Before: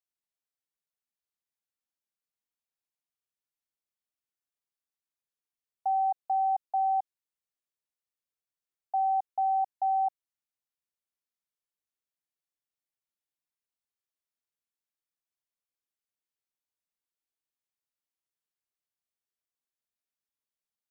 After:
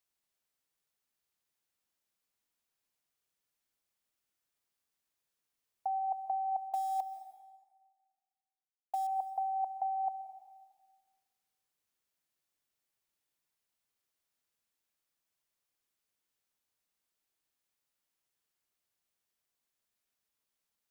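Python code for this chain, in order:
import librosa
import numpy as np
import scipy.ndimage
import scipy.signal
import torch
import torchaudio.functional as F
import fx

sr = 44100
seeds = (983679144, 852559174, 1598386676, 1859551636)

y = fx.over_compress(x, sr, threshold_db=-33.0, ratio=-1.0)
y = fx.quant_companded(y, sr, bits=6, at=(6.68, 9.07))
y = fx.rev_plate(y, sr, seeds[0], rt60_s=1.5, hf_ratio=0.8, predelay_ms=120, drr_db=11.0)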